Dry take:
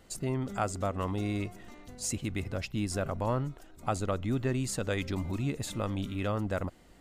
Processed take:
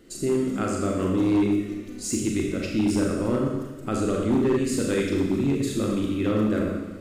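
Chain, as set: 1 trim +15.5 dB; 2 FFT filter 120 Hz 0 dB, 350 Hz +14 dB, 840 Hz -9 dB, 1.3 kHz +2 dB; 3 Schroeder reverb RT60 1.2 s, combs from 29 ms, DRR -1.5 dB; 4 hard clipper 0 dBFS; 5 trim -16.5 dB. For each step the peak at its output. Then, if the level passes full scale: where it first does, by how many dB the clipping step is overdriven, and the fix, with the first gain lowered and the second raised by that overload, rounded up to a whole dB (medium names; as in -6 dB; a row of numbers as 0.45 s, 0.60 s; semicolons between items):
-1.5 dBFS, +4.5 dBFS, +7.5 dBFS, 0.0 dBFS, -16.5 dBFS; step 2, 7.5 dB; step 1 +7.5 dB, step 5 -8.5 dB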